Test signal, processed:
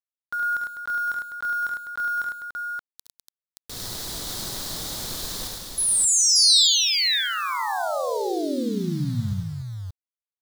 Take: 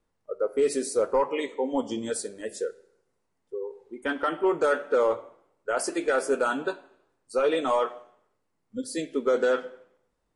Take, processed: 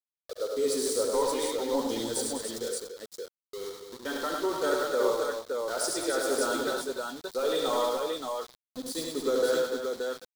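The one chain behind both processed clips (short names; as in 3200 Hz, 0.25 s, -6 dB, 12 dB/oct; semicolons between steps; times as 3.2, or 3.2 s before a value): sample gate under -35 dBFS; resonant high shelf 3200 Hz +6 dB, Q 3; tapped delay 62/70/103/202/289/575 ms -15.5/-6/-4/-8.5/-7.5/-3.5 dB; gain -6 dB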